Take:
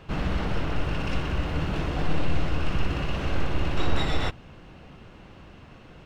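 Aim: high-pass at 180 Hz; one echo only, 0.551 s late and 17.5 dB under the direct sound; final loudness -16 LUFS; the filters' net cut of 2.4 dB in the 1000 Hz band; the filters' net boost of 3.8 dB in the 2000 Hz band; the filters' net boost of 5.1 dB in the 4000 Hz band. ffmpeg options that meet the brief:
-af "highpass=180,equalizer=f=1k:t=o:g=-5,equalizer=f=2k:t=o:g=5,equalizer=f=4k:t=o:g=5,aecho=1:1:551:0.133,volume=14.5dB"

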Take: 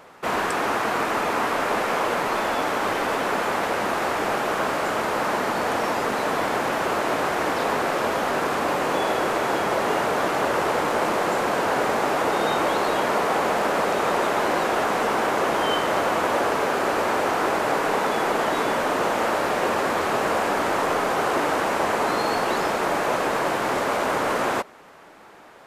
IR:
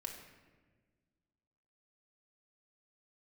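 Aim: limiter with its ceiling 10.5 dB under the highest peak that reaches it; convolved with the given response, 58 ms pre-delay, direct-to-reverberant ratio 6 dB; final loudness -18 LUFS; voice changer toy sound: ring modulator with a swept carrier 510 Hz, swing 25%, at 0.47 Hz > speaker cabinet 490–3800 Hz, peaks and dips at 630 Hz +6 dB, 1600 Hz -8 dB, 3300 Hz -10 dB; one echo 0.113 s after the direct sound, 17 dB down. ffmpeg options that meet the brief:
-filter_complex "[0:a]alimiter=limit=-19.5dB:level=0:latency=1,aecho=1:1:113:0.141,asplit=2[a][b];[1:a]atrim=start_sample=2205,adelay=58[c];[b][c]afir=irnorm=-1:irlink=0,volume=-4dB[d];[a][d]amix=inputs=2:normalize=0,aeval=exprs='val(0)*sin(2*PI*510*n/s+510*0.25/0.47*sin(2*PI*0.47*n/s))':c=same,highpass=490,equalizer=f=630:t=q:w=4:g=6,equalizer=f=1.6k:t=q:w=4:g=-8,equalizer=f=3.3k:t=q:w=4:g=-10,lowpass=f=3.8k:w=0.5412,lowpass=f=3.8k:w=1.3066,volume=14.5dB"

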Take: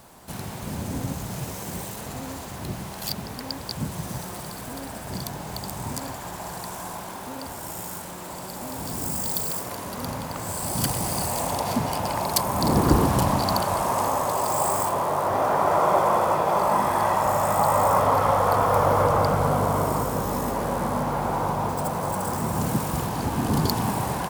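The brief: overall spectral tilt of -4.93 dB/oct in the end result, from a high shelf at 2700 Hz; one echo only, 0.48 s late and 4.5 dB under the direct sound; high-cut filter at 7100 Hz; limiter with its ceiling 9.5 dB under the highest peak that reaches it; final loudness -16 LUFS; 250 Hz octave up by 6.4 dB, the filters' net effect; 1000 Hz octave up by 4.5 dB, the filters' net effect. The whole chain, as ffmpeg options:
-af "lowpass=7.1k,equalizer=f=250:t=o:g=8,equalizer=f=1k:t=o:g=4,highshelf=f=2.7k:g=7,alimiter=limit=-9.5dB:level=0:latency=1,aecho=1:1:480:0.596,volume=5dB"

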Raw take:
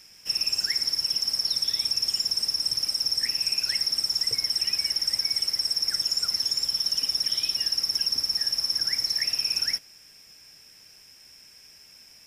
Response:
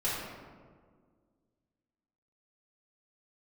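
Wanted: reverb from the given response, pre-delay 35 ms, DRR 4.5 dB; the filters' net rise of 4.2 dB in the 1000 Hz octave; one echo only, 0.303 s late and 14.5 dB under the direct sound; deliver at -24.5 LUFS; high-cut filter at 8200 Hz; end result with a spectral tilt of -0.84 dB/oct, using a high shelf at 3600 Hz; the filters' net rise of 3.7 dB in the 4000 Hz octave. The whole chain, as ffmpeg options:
-filter_complex "[0:a]lowpass=8.2k,equalizer=f=1k:t=o:g=5,highshelf=f=3.6k:g=3.5,equalizer=f=4k:t=o:g=3,aecho=1:1:303:0.188,asplit=2[a][b];[1:a]atrim=start_sample=2205,adelay=35[c];[b][c]afir=irnorm=-1:irlink=0,volume=-12.5dB[d];[a][d]amix=inputs=2:normalize=0,volume=-5.5dB"

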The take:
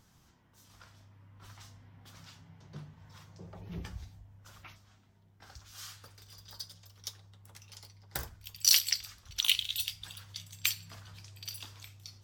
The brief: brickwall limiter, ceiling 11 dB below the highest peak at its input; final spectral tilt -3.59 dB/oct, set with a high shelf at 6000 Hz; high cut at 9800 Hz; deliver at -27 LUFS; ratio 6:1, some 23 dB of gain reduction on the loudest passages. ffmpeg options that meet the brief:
-af "lowpass=9.8k,highshelf=f=6k:g=-6,acompressor=threshold=-49dB:ratio=6,volume=28.5dB,alimiter=limit=-11.5dB:level=0:latency=1"

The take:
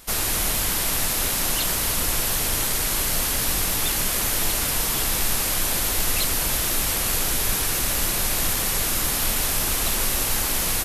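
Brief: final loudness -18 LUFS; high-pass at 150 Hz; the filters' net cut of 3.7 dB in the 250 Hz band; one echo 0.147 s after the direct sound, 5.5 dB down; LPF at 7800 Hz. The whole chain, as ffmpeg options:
-af "highpass=150,lowpass=7.8k,equalizer=f=250:t=o:g=-4,aecho=1:1:147:0.531,volume=6dB"

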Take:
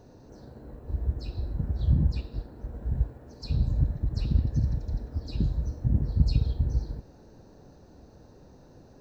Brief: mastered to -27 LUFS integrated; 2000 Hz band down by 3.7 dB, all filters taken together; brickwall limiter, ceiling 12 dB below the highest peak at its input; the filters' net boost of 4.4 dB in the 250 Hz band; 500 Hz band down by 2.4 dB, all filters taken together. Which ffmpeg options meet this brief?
-af "equalizer=f=250:t=o:g=8,equalizer=f=500:t=o:g=-6.5,equalizer=f=2k:t=o:g=-5,volume=5dB,alimiter=limit=-15dB:level=0:latency=1"

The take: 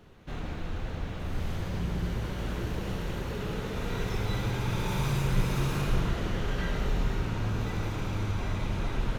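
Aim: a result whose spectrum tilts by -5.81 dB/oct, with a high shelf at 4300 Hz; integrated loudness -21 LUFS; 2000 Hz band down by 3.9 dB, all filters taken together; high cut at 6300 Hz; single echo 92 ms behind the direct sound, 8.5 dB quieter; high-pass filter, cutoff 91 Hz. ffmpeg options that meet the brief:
-af "highpass=91,lowpass=6.3k,equalizer=f=2k:t=o:g=-6.5,highshelf=f=4.3k:g=6,aecho=1:1:92:0.376,volume=12.5dB"

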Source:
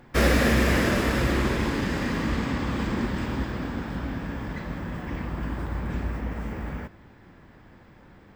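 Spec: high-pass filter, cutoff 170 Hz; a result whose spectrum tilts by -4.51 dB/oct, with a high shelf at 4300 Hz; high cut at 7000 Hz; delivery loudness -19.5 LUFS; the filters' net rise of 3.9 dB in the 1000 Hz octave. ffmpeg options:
-af "highpass=170,lowpass=7k,equalizer=f=1k:t=o:g=4.5,highshelf=f=4.3k:g=6,volume=7.5dB"

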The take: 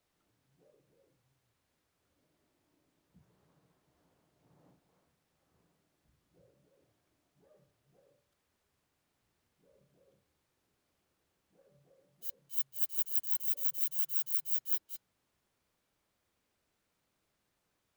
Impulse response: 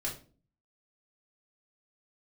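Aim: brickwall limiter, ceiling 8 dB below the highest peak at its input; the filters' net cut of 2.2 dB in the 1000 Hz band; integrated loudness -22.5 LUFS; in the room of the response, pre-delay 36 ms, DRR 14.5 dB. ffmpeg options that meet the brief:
-filter_complex "[0:a]equalizer=f=1k:t=o:g=-3,alimiter=level_in=1.5dB:limit=-24dB:level=0:latency=1,volume=-1.5dB,asplit=2[a][b];[1:a]atrim=start_sample=2205,adelay=36[c];[b][c]afir=irnorm=-1:irlink=0,volume=-17dB[d];[a][d]amix=inputs=2:normalize=0,volume=14.5dB"

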